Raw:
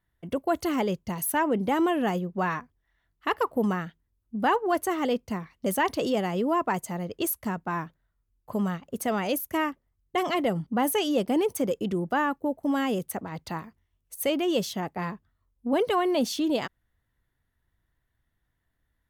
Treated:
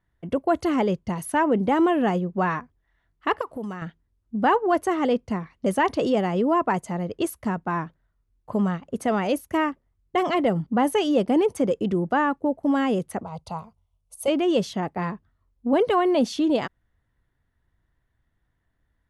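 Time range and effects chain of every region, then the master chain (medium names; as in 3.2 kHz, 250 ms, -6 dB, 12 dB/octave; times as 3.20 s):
3.41–3.82 s: treble shelf 2.9 kHz +10 dB + compression 2.5:1, threshold -39 dBFS
13.23–14.28 s: peaking EQ 10 kHz +5.5 dB 0.28 oct + static phaser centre 740 Hz, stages 4
whole clip: elliptic low-pass 11 kHz, stop band 40 dB; treble shelf 3.2 kHz -10.5 dB; trim +5.5 dB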